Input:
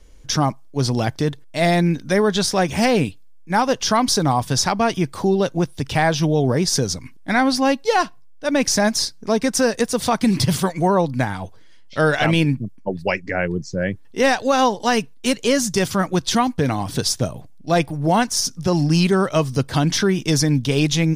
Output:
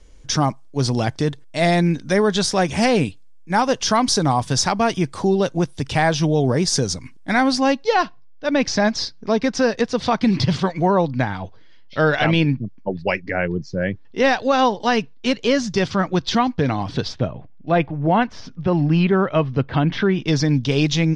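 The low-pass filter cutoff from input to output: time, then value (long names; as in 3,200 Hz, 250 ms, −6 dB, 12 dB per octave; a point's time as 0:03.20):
low-pass filter 24 dB per octave
0:07.47 9,400 Hz
0:07.94 5,000 Hz
0:16.89 5,000 Hz
0:17.31 3,000 Hz
0:19.94 3,000 Hz
0:20.55 5,800 Hz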